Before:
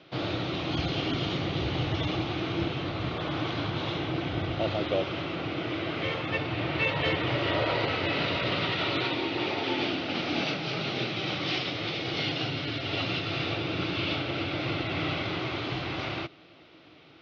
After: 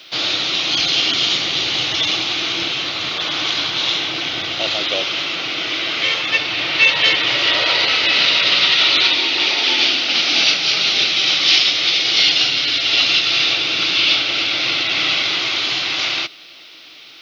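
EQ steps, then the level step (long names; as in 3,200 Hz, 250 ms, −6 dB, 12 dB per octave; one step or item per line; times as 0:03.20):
spectral tilt +4.5 dB per octave
parametric band 240 Hz +2.5 dB 1.5 octaves
high-shelf EQ 2,900 Hz +11.5 dB
+5.0 dB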